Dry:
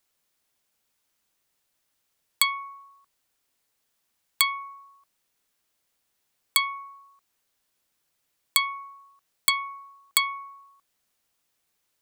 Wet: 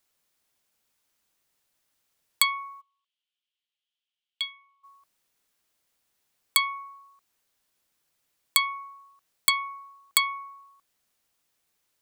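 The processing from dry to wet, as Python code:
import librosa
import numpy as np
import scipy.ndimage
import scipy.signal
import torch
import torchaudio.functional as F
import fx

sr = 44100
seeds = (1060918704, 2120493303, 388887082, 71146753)

y = fx.bandpass_q(x, sr, hz=3100.0, q=5.9, at=(2.8, 4.83), fade=0.02)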